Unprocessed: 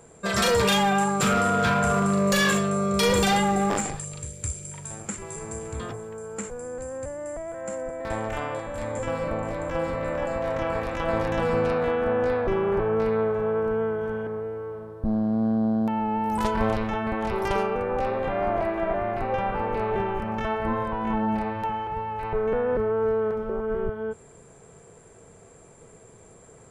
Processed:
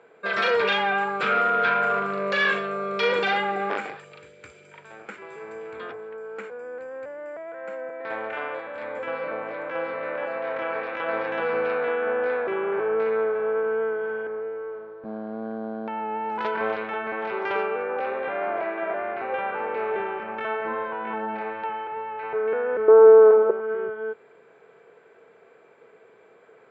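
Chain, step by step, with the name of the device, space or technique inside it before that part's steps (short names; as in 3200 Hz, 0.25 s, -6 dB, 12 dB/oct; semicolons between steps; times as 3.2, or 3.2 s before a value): phone earpiece (speaker cabinet 370–3800 Hz, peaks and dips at 440 Hz +5 dB, 1500 Hz +8 dB, 2300 Hz +6 dB); 22.88–23.51 band shelf 560 Hz +12.5 dB 2.6 oct; gain -2.5 dB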